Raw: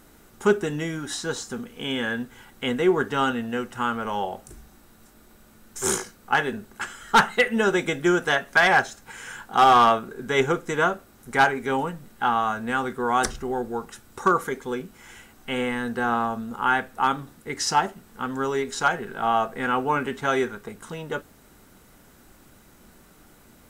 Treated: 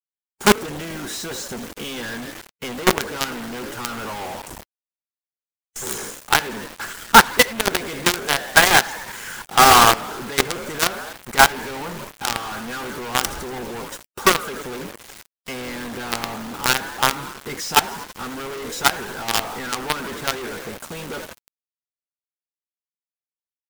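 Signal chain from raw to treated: frequency-shifting echo 81 ms, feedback 58%, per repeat +41 Hz, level -13 dB; companded quantiser 2-bit; harmonic-percussive split percussive +5 dB; trim -6.5 dB

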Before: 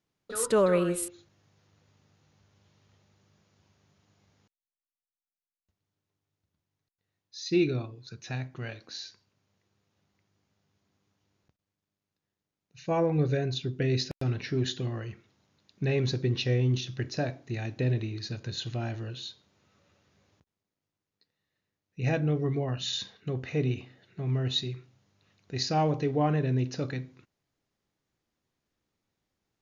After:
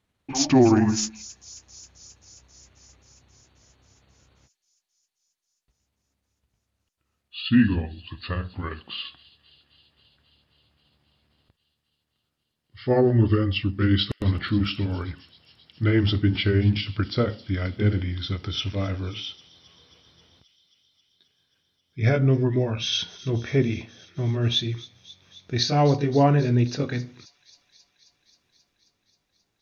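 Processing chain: pitch bend over the whole clip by -8.5 st ending unshifted; feedback echo behind a high-pass 267 ms, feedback 77%, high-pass 4.9 kHz, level -13 dB; trim +8 dB

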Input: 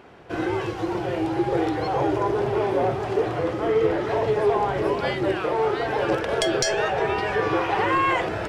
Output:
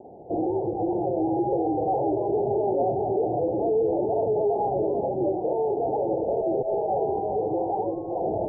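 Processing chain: peak limiter -21 dBFS, peak gain reduction 11 dB; steep low-pass 840 Hz 96 dB/octave; bass shelf 170 Hz -11.5 dB; trim +6.5 dB

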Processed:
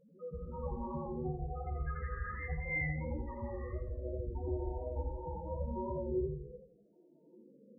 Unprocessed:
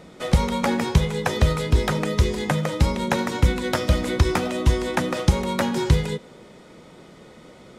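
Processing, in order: spectral sustain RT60 0.72 s; hum notches 60/120/180/240 Hz; reverb removal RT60 2 s; 1.71–2.49 s: peaking EQ 1.8 kHz +13.5 dB 2.1 oct; compression 6:1, threshold -26 dBFS, peak gain reduction 16 dB; loudest bins only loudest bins 1; gated-style reverb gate 420 ms rising, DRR -6.5 dB; modulated delay 84 ms, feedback 36%, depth 79 cents, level -7 dB; trim -7 dB

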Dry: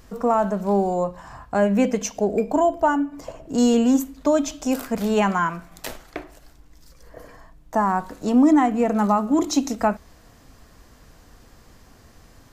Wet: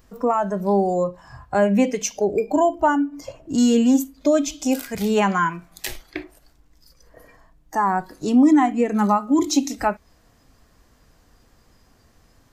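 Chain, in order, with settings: spectral noise reduction 12 dB; in parallel at -1 dB: compression, threshold -29 dBFS, peak gain reduction 16 dB

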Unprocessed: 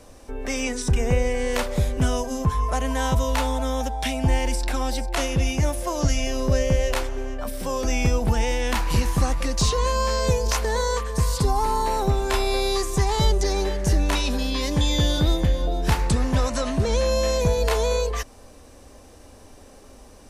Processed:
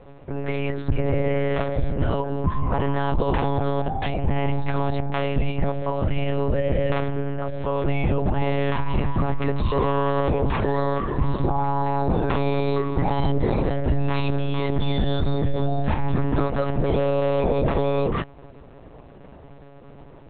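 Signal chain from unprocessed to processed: low-pass 1.4 kHz 6 dB/octave; peak limiter -16.5 dBFS, peak gain reduction 6.5 dB; monotone LPC vocoder at 8 kHz 140 Hz; trim +3 dB

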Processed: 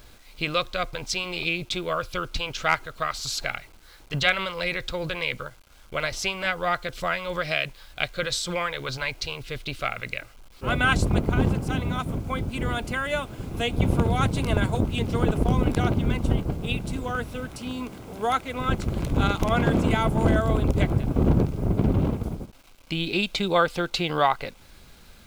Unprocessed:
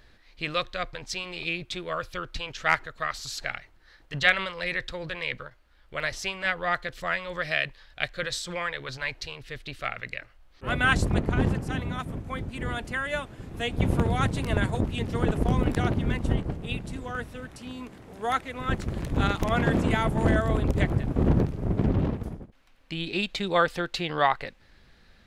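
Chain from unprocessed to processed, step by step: in parallel at +1 dB: compression 10:1, threshold -31 dBFS, peak gain reduction 17 dB; on the sum: bit crusher 9-bit; band-stop 1.8 kHz, Q 5

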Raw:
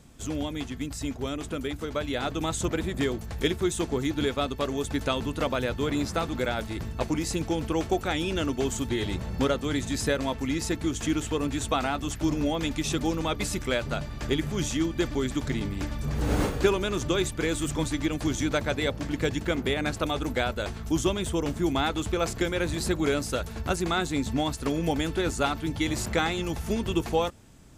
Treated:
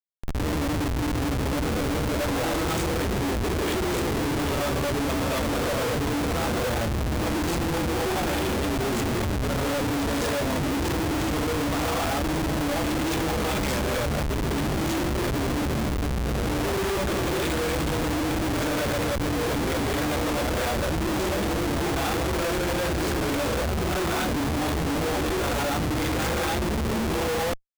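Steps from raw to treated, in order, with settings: gated-style reverb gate 280 ms rising, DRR -8 dB; Schmitt trigger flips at -24 dBFS; trim -5.5 dB

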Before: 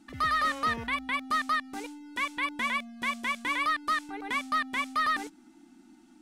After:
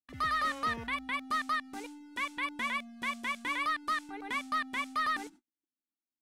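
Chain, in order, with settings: gate -48 dBFS, range -46 dB; trim -4 dB

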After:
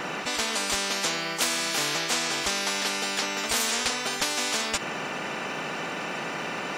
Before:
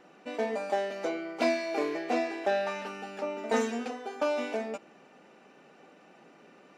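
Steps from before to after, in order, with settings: spectrum-flattening compressor 10:1; trim +5.5 dB

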